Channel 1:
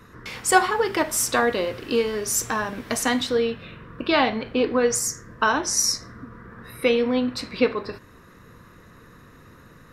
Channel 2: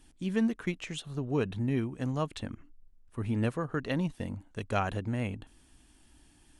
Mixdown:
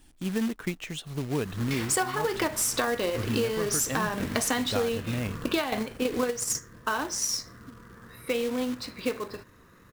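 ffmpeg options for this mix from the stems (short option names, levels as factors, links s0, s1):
-filter_complex "[0:a]adelay=1450,volume=1.33[s0];[1:a]volume=1.26,asplit=2[s1][s2];[s2]apad=whole_len=501529[s3];[s0][s3]sidechaingate=range=0.355:threshold=0.00158:ratio=16:detection=peak[s4];[s4][s1]amix=inputs=2:normalize=0,acrusher=bits=3:mode=log:mix=0:aa=0.000001,acompressor=threshold=0.0708:ratio=12"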